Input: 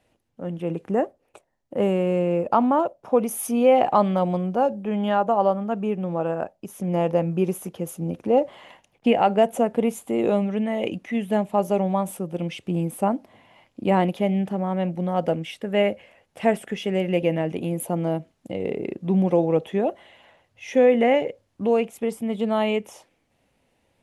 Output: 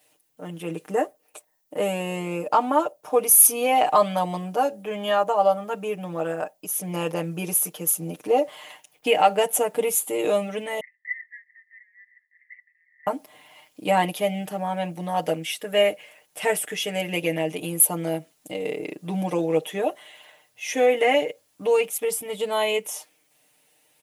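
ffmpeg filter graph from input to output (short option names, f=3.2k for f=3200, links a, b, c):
-filter_complex "[0:a]asettb=1/sr,asplit=3[a][b][c];[a]atrim=end=10.804[d];[b]atrim=start=10.8:end=13.07,asetpts=PTS-STARTPTS,afade=t=in:d=0.004:c=qsin,afade=t=out:st=2.266:d=0.004:c=qsin,asuperpass=centerf=1900:order=8:qfactor=7.1,acontrast=44[e];[c]atrim=start=13.066[f];[d][e]acrossfade=d=0.004:c1=hsin:c2=qsin[g];[g][f]acrossfade=d=0.004:c1=qsin:c2=hsin,aemphasis=mode=production:type=riaa,aecho=1:1:6.6:0.89,volume=-1dB"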